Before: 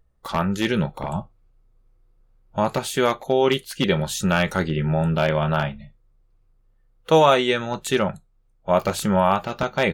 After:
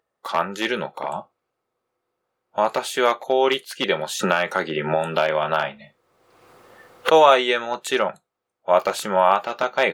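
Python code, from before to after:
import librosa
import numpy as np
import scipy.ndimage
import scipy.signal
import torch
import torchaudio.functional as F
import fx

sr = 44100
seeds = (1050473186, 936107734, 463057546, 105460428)

y = scipy.signal.sosfilt(scipy.signal.butter(2, 460.0, 'highpass', fs=sr, output='sos'), x)
y = fx.high_shelf(y, sr, hz=4600.0, db=-6.5)
y = fx.band_squash(y, sr, depth_pct=100, at=(4.19, 7.1))
y = y * 10.0 ** (3.5 / 20.0)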